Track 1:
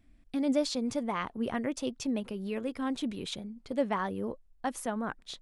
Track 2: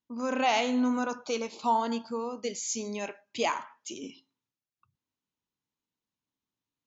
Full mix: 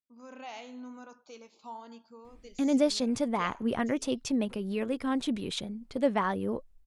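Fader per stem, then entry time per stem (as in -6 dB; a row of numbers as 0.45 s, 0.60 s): +3.0 dB, -17.5 dB; 2.25 s, 0.00 s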